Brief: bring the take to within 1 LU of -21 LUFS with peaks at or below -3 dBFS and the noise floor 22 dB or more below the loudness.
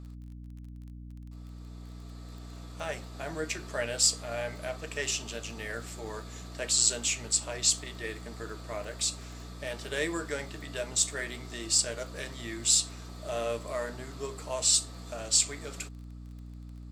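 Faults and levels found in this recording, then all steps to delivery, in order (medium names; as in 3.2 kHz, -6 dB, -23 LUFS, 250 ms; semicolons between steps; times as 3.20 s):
tick rate 24 per s; hum 60 Hz; highest harmonic 300 Hz; hum level -42 dBFS; loudness -30.0 LUFS; peak level -9.5 dBFS; loudness target -21.0 LUFS
-> de-click; de-hum 60 Hz, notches 5; trim +9 dB; peak limiter -3 dBFS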